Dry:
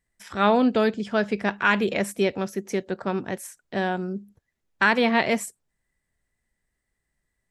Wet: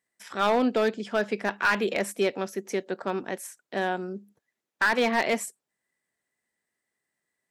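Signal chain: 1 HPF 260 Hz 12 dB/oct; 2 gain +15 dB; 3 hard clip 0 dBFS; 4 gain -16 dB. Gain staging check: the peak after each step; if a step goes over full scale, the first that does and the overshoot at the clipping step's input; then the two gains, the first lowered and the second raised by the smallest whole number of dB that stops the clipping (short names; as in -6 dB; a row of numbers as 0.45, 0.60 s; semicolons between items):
-5.5, +9.5, 0.0, -16.0 dBFS; step 2, 9.5 dB; step 2 +5 dB, step 4 -6 dB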